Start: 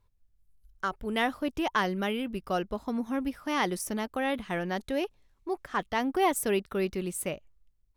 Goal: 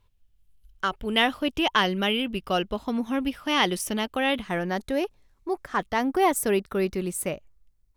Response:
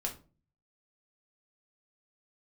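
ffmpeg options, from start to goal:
-af "asetnsamples=nb_out_samples=441:pad=0,asendcmd='4.42 equalizer g -3',equalizer=frequency=3000:width_type=o:width=0.6:gain=9.5,volume=4dB"

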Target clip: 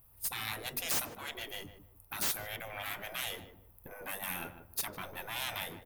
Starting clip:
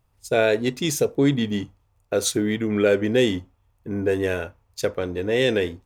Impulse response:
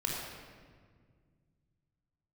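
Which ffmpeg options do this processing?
-filter_complex "[0:a]aexciter=amount=14.5:drive=2.8:freq=10000,asplit=2[link_01][link_02];[link_02]acompressor=threshold=-34dB:ratio=6,volume=1.5dB[link_03];[link_01][link_03]amix=inputs=2:normalize=0,aeval=exprs='(tanh(3.55*val(0)+0.6)-tanh(0.6))/3.55':channel_layout=same,afftfilt=real='re*lt(hypot(re,im),0.0891)':imag='im*lt(hypot(re,im),0.0891)':win_size=1024:overlap=0.75,asplit=2[link_04][link_05];[link_05]adelay=152,lowpass=frequency=1100:poles=1,volume=-9dB,asplit=2[link_06][link_07];[link_07]adelay=152,lowpass=frequency=1100:poles=1,volume=0.27,asplit=2[link_08][link_09];[link_09]adelay=152,lowpass=frequency=1100:poles=1,volume=0.27[link_10];[link_04][link_06][link_08][link_10]amix=inputs=4:normalize=0,volume=-4dB"

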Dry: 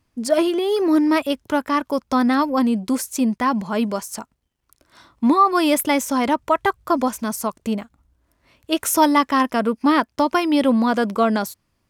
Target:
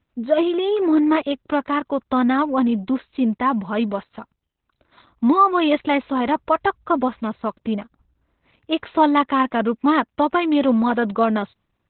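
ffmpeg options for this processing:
ffmpeg -i in.wav -ar 48000 -c:a libopus -b:a 8k out.opus

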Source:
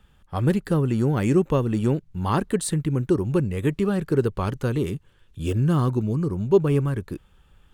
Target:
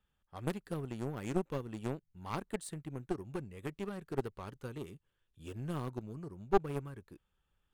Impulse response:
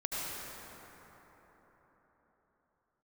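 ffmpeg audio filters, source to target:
-af "lowshelf=frequency=270:gain=-5,aeval=exprs='clip(val(0),-1,0.106)':channel_layout=same,aeval=exprs='0.355*(cos(1*acos(clip(val(0)/0.355,-1,1)))-cos(1*PI/2))+0.1*(cos(3*acos(clip(val(0)/0.355,-1,1)))-cos(3*PI/2))':channel_layout=same,volume=-3.5dB"

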